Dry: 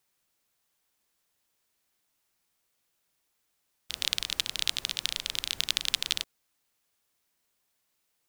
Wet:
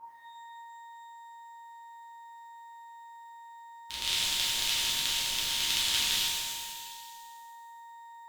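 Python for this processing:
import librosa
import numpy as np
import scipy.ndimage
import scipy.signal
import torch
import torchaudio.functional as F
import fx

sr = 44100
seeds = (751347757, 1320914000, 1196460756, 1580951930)

y = x + 10.0 ** (-45.0 / 20.0) * np.sin(2.0 * np.pi * 930.0 * np.arange(len(x)) / sr)
y = fx.echo_stepped(y, sr, ms=162, hz=800.0, octaves=0.7, feedback_pct=70, wet_db=-10.0)
y = fx.rev_shimmer(y, sr, seeds[0], rt60_s=1.6, semitones=12, shimmer_db=-8, drr_db=-10.0)
y = F.gain(torch.from_numpy(y), -8.0).numpy()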